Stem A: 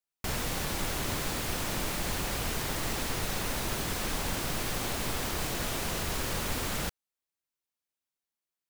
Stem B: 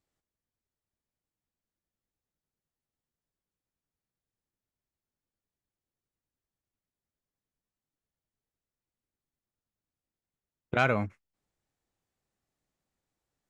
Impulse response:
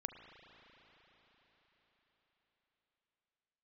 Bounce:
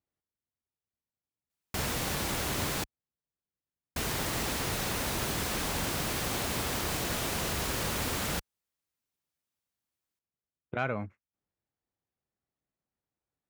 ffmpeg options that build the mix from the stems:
-filter_complex "[0:a]adelay=1500,volume=1dB,asplit=3[link_01][link_02][link_03];[link_01]atrim=end=2.84,asetpts=PTS-STARTPTS,afade=type=out:start_time=2.836:duration=0.004:curve=hsin[link_04];[link_02]atrim=start=2.84:end=3.96,asetpts=PTS-STARTPTS,volume=0[link_05];[link_03]atrim=start=3.96,asetpts=PTS-STARTPTS,afade=type=in:duration=0.004:curve=hsin[link_06];[link_04][link_05][link_06]concat=n=3:v=0:a=1[link_07];[1:a]lowpass=frequency=2500:poles=1,volume=-5.5dB[link_08];[link_07][link_08]amix=inputs=2:normalize=0,highpass=47"

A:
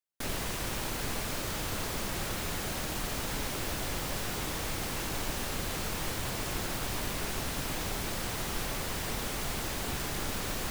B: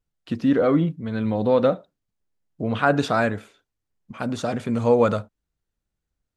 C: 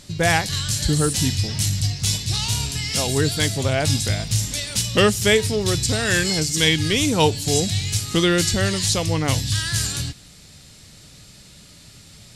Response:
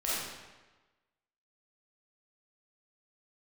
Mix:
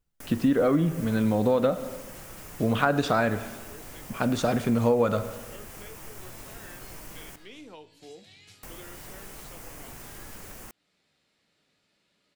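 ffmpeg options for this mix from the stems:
-filter_complex "[0:a]flanger=delay=6:depth=3.5:regen=-63:speed=0.43:shape=triangular,equalizer=frequency=3900:width_type=o:width=0.58:gain=-10.5,volume=-1dB,asplit=3[link_01][link_02][link_03];[link_01]atrim=end=7.36,asetpts=PTS-STARTPTS,afade=type=out:start_time=7.356:duration=0.004:curve=hsin[link_04];[link_02]atrim=start=7.36:end=8.63,asetpts=PTS-STARTPTS,volume=0[link_05];[link_03]atrim=start=8.63,asetpts=PTS-STARTPTS,afade=type=in:duration=0.004:curve=hsin[link_06];[link_04][link_05][link_06]concat=n=3:v=0:a=1,asplit=2[link_07][link_08];[link_08]volume=-22.5dB[link_09];[1:a]volume=1.5dB,asplit=2[link_10][link_11];[link_11]volume=-21.5dB[link_12];[2:a]flanger=delay=9.8:depth=9.9:regen=70:speed=0.49:shape=sinusoidal,acrossover=split=230 3400:gain=0.0794 1 0.112[link_13][link_14][link_15];[link_13][link_14][link_15]amix=inputs=3:normalize=0,alimiter=limit=-16dB:level=0:latency=1:release=340,adelay=550,volume=-15dB[link_16];[link_07][link_16]amix=inputs=2:normalize=0,highshelf=frequency=7500:gain=6.5,acompressor=threshold=-46dB:ratio=2,volume=0dB[link_17];[3:a]atrim=start_sample=2205[link_18];[link_09][link_12]amix=inputs=2:normalize=0[link_19];[link_19][link_18]afir=irnorm=-1:irlink=0[link_20];[link_10][link_17][link_20]amix=inputs=3:normalize=0,acompressor=threshold=-19dB:ratio=5"

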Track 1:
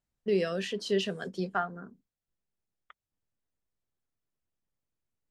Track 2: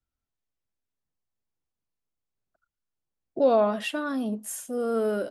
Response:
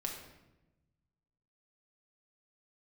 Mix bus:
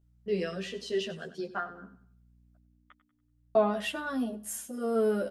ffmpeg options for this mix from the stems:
-filter_complex "[0:a]volume=-0.5dB,asplit=2[link_01][link_02];[link_02]volume=-14.5dB[link_03];[1:a]volume=0.5dB,asplit=3[link_04][link_05][link_06];[link_04]atrim=end=2.58,asetpts=PTS-STARTPTS,afade=type=out:start_time=2.576:duration=0.004:curve=hsin[link_07];[link_05]atrim=start=2.58:end=3.55,asetpts=PTS-STARTPTS,volume=0[link_08];[link_06]atrim=start=3.55,asetpts=PTS-STARTPTS,afade=type=in:duration=0.004:curve=hsin[link_09];[link_07][link_08][link_09]concat=n=3:v=0:a=1,asplit=2[link_10][link_11];[link_11]volume=-21dB[link_12];[link_03][link_12]amix=inputs=2:normalize=0,aecho=0:1:95|190|285|380|475:1|0.35|0.122|0.0429|0.015[link_13];[link_01][link_10][link_13]amix=inputs=3:normalize=0,aeval=exprs='val(0)+0.001*(sin(2*PI*60*n/s)+sin(2*PI*2*60*n/s)/2+sin(2*PI*3*60*n/s)/3+sin(2*PI*4*60*n/s)/4+sin(2*PI*5*60*n/s)/5)':channel_layout=same,asplit=2[link_14][link_15];[link_15]adelay=11.6,afreqshift=-0.58[link_16];[link_14][link_16]amix=inputs=2:normalize=1"

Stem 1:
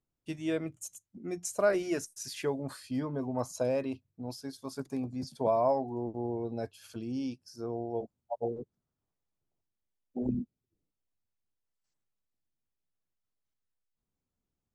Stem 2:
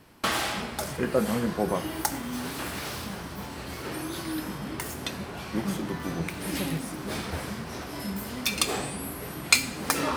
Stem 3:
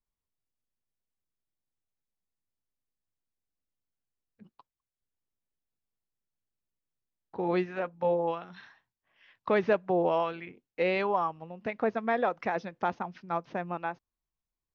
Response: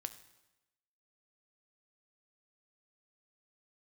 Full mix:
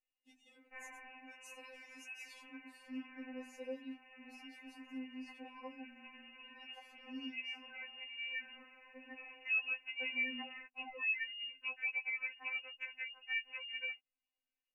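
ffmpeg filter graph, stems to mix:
-filter_complex "[0:a]bandreject=frequency=50:width_type=h:width=6,bandreject=frequency=100:width_type=h:width=6,bandreject=frequency=150:width_type=h:width=6,bandreject=frequency=200:width_type=h:width=6,bandreject=frequency=250:width_type=h:width=6,volume=-16.5dB[link_01];[1:a]highpass=frequency=650:poles=1,adelay=500,volume=-13dB[link_02];[2:a]acompressor=threshold=-28dB:ratio=6,volume=2.5dB[link_03];[link_02][link_03]amix=inputs=2:normalize=0,lowpass=frequency=2600:width_type=q:width=0.5098,lowpass=frequency=2600:width_type=q:width=0.6013,lowpass=frequency=2600:width_type=q:width=0.9,lowpass=frequency=2600:width_type=q:width=2.563,afreqshift=-3000,acompressor=threshold=-47dB:ratio=1.5,volume=0dB[link_04];[link_01][link_04]amix=inputs=2:normalize=0,equalizer=frequency=1300:width_type=o:width=0.33:gain=-13,afftfilt=real='re*3.46*eq(mod(b,12),0)':imag='im*3.46*eq(mod(b,12),0)':win_size=2048:overlap=0.75"

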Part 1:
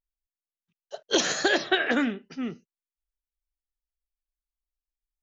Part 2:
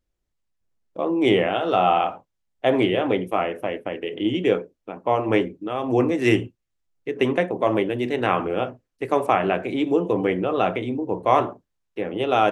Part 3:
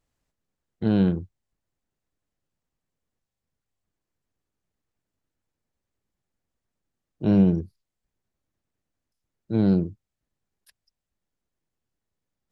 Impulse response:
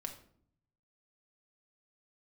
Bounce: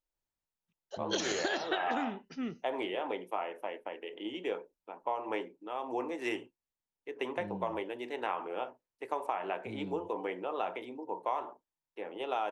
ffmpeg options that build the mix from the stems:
-filter_complex "[0:a]volume=-5dB[link_01];[1:a]highpass=390,equalizer=frequency=910:width_type=o:width=0.3:gain=11,volume=-12dB[link_02];[2:a]acompressor=threshold=-27dB:ratio=2,adelay=150,volume=-17.5dB[link_03];[link_01][link_02][link_03]amix=inputs=3:normalize=0,acompressor=threshold=-29dB:ratio=6"

